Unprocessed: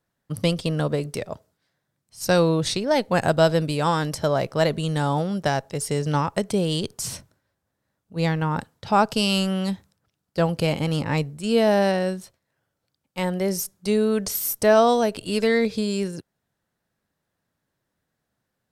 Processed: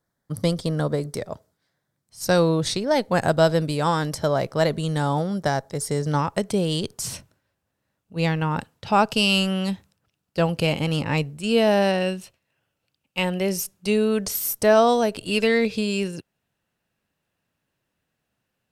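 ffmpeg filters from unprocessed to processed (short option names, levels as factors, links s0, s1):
-af "asetnsamples=n=441:p=0,asendcmd='1.27 equalizer g -4;5.19 equalizer g -11;6.19 equalizer g 0;7.14 equalizer g 7;12.01 equalizer g 15;13.52 equalizer g 9;14.17 equalizer g 1.5;15.31 equalizer g 11',equalizer=f=2700:t=o:w=0.32:g=-13"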